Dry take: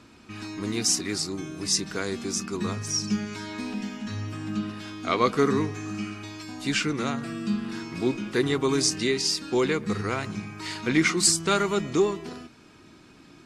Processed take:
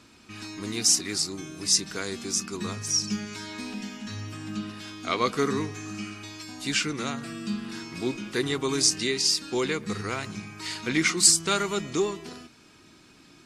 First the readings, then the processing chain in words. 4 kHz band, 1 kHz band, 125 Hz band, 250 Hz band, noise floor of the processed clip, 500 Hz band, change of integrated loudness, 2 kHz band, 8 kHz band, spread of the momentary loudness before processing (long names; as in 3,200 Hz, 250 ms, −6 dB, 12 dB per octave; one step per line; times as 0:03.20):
+2.0 dB, −2.5 dB, −4.0 dB, −4.0 dB, −55 dBFS, −4.0 dB, 0.0 dB, −1.0 dB, +3.0 dB, 12 LU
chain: high-shelf EQ 2,500 Hz +8 dB
level −4 dB